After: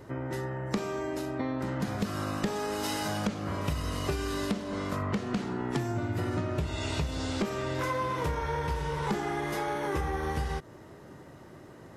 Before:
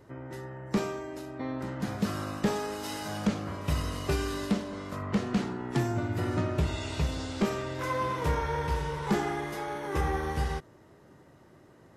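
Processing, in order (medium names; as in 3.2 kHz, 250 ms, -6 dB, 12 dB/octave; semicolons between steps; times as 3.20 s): compression 6:1, threshold -35 dBFS, peak gain reduction 13 dB; trim +7 dB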